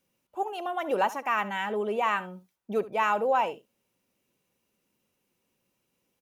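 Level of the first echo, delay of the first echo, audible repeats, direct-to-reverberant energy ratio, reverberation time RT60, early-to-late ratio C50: -17.0 dB, 71 ms, 1, no reverb, no reverb, no reverb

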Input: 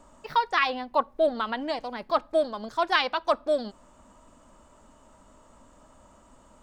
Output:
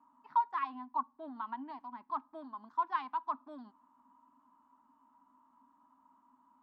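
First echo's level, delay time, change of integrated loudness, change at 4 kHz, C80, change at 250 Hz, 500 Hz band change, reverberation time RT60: no echo, no echo, -11.0 dB, -28.0 dB, no reverb, -13.0 dB, -27.0 dB, no reverb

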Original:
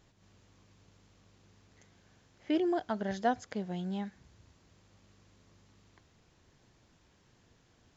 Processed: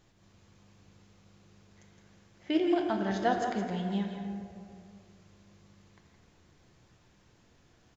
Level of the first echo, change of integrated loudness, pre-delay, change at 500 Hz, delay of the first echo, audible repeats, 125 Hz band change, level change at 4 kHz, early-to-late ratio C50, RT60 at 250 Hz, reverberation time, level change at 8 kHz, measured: -10.0 dB, +3.0 dB, 6 ms, +3.0 dB, 165 ms, 2, +4.0 dB, +5.5 dB, 2.5 dB, 2.3 s, 2.3 s, no reading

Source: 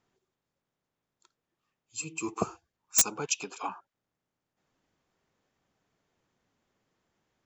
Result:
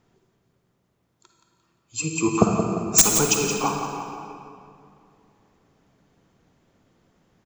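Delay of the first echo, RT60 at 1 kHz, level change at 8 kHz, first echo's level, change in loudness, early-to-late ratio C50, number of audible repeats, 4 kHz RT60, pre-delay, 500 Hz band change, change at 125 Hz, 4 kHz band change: 174 ms, 2.4 s, +9.5 dB, -9.0 dB, +9.5 dB, 2.0 dB, 3, 1.7 s, 39 ms, +14.5 dB, +18.0 dB, +9.5 dB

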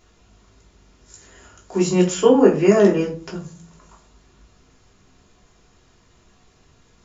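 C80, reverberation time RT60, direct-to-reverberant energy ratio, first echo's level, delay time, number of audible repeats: 16.5 dB, 0.40 s, -3.5 dB, no echo, no echo, no echo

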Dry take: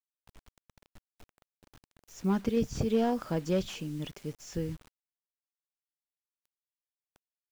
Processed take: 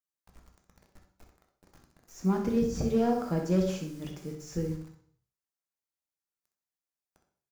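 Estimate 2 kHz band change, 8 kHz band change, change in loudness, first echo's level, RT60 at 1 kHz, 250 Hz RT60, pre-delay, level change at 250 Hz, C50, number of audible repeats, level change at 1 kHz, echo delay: -1.0 dB, +0.5 dB, +2.0 dB, -9.5 dB, 0.55 s, 0.55 s, 3 ms, +2.5 dB, 6.0 dB, 1, +1.5 dB, 64 ms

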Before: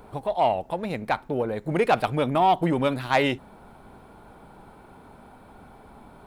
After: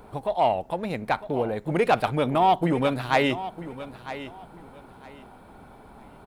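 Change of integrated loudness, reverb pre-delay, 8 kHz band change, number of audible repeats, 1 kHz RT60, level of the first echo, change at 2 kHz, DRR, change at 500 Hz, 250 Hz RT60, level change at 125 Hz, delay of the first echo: -0.5 dB, no reverb, 0.0 dB, 2, no reverb, -14.0 dB, 0.0 dB, no reverb, 0.0 dB, no reverb, 0.0 dB, 954 ms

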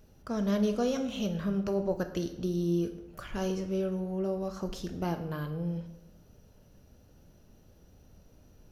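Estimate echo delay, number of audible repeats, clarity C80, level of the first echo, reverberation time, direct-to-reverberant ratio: no echo, no echo, 12.5 dB, no echo, 0.90 s, 7.0 dB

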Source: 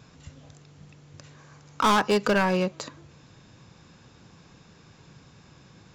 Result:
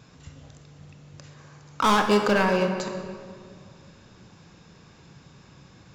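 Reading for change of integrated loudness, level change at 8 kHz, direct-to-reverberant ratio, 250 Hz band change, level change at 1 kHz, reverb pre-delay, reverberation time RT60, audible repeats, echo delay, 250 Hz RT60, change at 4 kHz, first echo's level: +0.5 dB, +0.5 dB, 4.5 dB, +2.0 dB, +1.5 dB, 23 ms, 2.2 s, no echo, no echo, 2.6 s, +1.0 dB, no echo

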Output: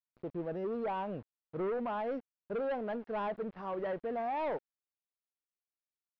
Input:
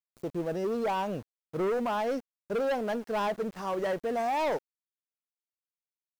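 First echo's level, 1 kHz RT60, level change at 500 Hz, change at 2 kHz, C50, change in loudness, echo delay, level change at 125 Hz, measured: no echo, no reverb, -5.5 dB, -8.0 dB, no reverb, -6.0 dB, no echo, -5.5 dB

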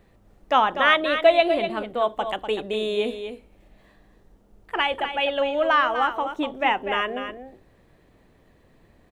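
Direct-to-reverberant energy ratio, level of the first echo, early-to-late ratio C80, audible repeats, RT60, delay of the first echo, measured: no reverb, -9.0 dB, no reverb, 1, no reverb, 246 ms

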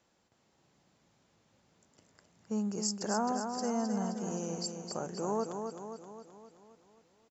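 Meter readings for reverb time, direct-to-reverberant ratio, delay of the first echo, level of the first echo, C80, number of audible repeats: no reverb, no reverb, 263 ms, -6.0 dB, no reverb, 6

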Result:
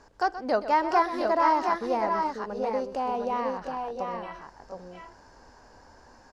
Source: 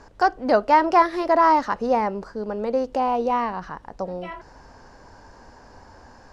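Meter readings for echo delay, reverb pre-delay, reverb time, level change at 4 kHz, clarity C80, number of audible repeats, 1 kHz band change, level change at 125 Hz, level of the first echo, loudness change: 126 ms, no reverb, no reverb, -4.0 dB, no reverb, 2, -5.5 dB, no reading, -13.0 dB, -6.0 dB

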